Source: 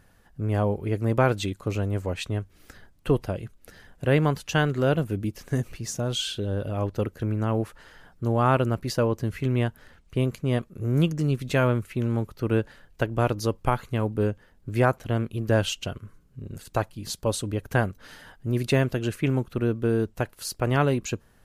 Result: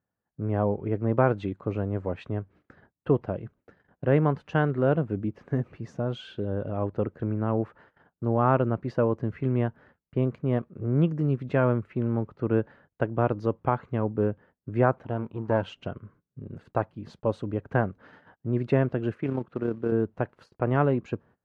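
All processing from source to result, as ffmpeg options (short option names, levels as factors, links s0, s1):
-filter_complex "[0:a]asettb=1/sr,asplit=3[s0][s1][s2];[s0]atrim=end=15.034[s3];[s1]atrim=start=15.03:end=15.66,asetpts=PTS-STARTPTS,afade=t=in:d=0.004:c=qsin,afade=t=out:st=0.626:d=0.004:c=qsin,aeval=exprs='if(lt(val(0),0),0.447*val(0),val(0))':c=same,equalizer=f=940:w=4.8:g=12.5[s4];[s2]atrim=start=15.656[s5];[s3][s4]acrossfade=d=0.004:c1=hsin:c2=qsin[s6];[s6][s5]acrossfade=d=0.004:c1=qsin:c2=hsin,asettb=1/sr,asplit=3[s7][s8][s9];[s7]atrim=end=19.144[s10];[s8]atrim=start=19.14:end=19.92,asetpts=PTS-STARTPTS,afade=t=in:d=0.004:c=qsin,afade=t=out:st=0.776:d=0.004:c=qsin,highpass=f=180:p=1,tremolo=f=33:d=0.4,acrusher=bits=5:mode=log:mix=0:aa=0.000001[s11];[s9]atrim=start=19.916[s12];[s10][s11]acrossfade=d=0.004:c1=hsin:c2=qsin[s13];[s13][s12]acrossfade=d=0.004:c1=qsin:c2=hsin,lowpass=1400,agate=range=0.0708:threshold=0.00355:ratio=16:detection=peak,highpass=110"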